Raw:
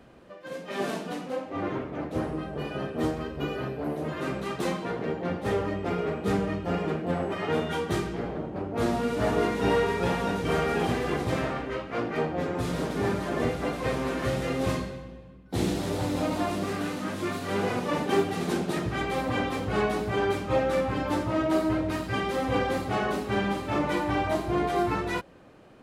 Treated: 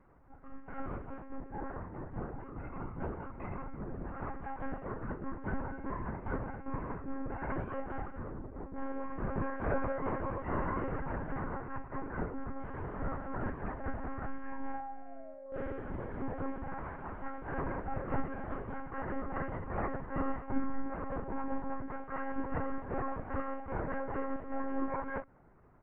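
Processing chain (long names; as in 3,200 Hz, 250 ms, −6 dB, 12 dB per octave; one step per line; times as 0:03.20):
parametric band 250 Hz −6.5 dB 0.89 octaves
single-sideband voice off tune −360 Hz 330–2,100 Hz
double-tracking delay 24 ms −7.5 dB
sound drawn into the spectrogram fall, 0:14.51–0:15.80, 470–990 Hz −38 dBFS
one-pitch LPC vocoder at 8 kHz 270 Hz
level −5.5 dB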